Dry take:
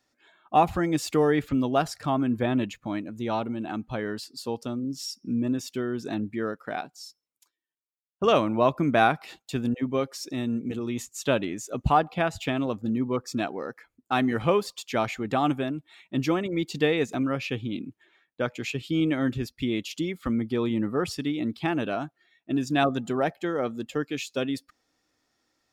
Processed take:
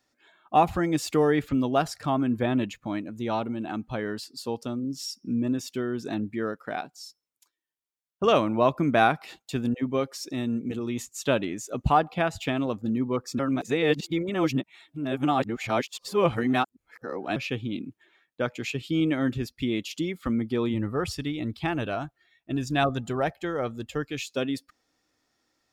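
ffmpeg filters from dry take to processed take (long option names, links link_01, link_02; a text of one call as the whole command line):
ffmpeg -i in.wav -filter_complex "[0:a]asplit=3[link_01][link_02][link_03];[link_01]afade=type=out:start_time=20.73:duration=0.02[link_04];[link_02]asubboost=boost=6:cutoff=85,afade=type=in:start_time=20.73:duration=0.02,afade=type=out:start_time=24.24:duration=0.02[link_05];[link_03]afade=type=in:start_time=24.24:duration=0.02[link_06];[link_04][link_05][link_06]amix=inputs=3:normalize=0,asplit=3[link_07][link_08][link_09];[link_07]atrim=end=13.392[link_10];[link_08]atrim=start=13.388:end=17.362,asetpts=PTS-STARTPTS,areverse[link_11];[link_09]atrim=start=17.358[link_12];[link_10][link_11]acrossfade=duration=0.004:curve1=hsin:curve2=hsin[link_13];[link_13][link_12]acrossfade=duration=0.004:curve1=hsin:curve2=hsin" out.wav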